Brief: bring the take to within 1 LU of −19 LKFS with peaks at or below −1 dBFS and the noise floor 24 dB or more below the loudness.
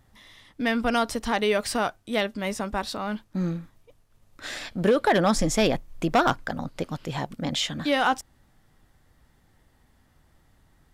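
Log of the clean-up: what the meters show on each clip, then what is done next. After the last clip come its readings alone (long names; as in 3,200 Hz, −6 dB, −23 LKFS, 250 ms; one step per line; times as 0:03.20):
share of clipped samples 0.2%; peaks flattened at −13.5 dBFS; integrated loudness −26.0 LKFS; sample peak −13.5 dBFS; target loudness −19.0 LKFS
→ clipped peaks rebuilt −13.5 dBFS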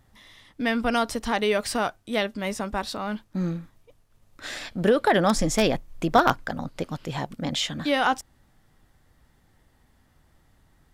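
share of clipped samples 0.0%; integrated loudness −25.5 LKFS; sample peak −4.5 dBFS; target loudness −19.0 LKFS
→ level +6.5 dB
brickwall limiter −1 dBFS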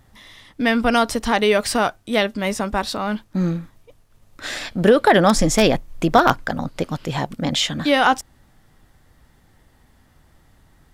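integrated loudness −19.5 LKFS; sample peak −1.0 dBFS; background noise floor −56 dBFS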